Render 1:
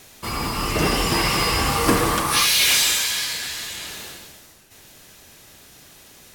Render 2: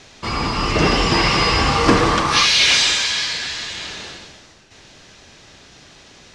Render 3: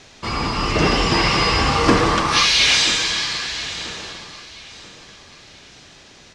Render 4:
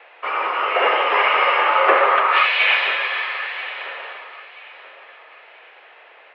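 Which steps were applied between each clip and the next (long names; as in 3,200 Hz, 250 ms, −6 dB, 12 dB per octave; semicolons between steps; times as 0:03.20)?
low-pass filter 6,100 Hz 24 dB per octave; level +4.5 dB
repeating echo 984 ms, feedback 37%, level −17.5 dB; level −1 dB
single-sideband voice off tune +73 Hz 440–2,600 Hz; level +4 dB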